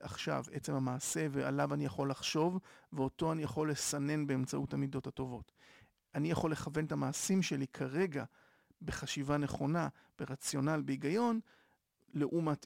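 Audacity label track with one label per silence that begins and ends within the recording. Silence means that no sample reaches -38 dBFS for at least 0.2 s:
2.580000	2.940000	silence
5.370000	6.150000	silence
8.240000	8.880000	silence
9.890000	10.190000	silence
11.400000	12.150000	silence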